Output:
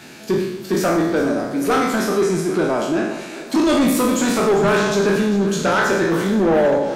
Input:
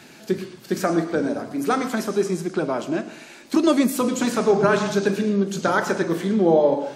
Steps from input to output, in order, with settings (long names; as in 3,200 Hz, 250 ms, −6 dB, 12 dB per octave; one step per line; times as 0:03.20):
peak hold with a decay on every bin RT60 0.78 s
soft clipping −15.5 dBFS, distortion −12 dB
echo with a time of its own for lows and highs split 340 Hz, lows 239 ms, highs 398 ms, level −14.5 dB
level +4 dB